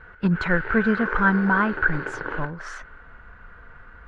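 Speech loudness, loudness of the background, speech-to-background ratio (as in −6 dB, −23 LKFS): −23.0 LKFS, −31.0 LKFS, 8.0 dB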